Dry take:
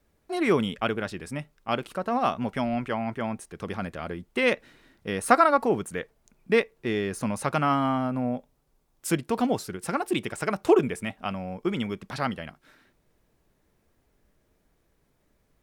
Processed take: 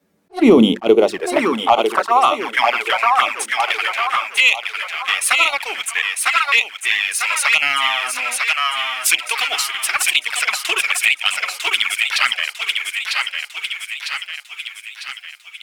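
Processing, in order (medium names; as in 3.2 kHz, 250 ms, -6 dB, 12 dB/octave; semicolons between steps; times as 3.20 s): hum notches 50/100/150/200/250/300/350 Hz; high-pass sweep 180 Hz -> 2.5 kHz, 0.21–2.88 s; level rider gain up to 11.5 dB; waveshaping leveller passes 1; on a send: thinning echo 950 ms, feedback 50%, high-pass 580 Hz, level -4 dB; on the sum: touch-sensitive flanger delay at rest 10.4 ms, full sweep at -12 dBFS; in parallel at +1 dB: compression, threshold -30 dBFS, peak gain reduction 20 dB; on the sum: dynamic bell 820 Hz, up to +4 dB, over -35 dBFS, Q 2; loudness maximiser +4 dB; attacks held to a fixed rise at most 380 dB/s; trim -1 dB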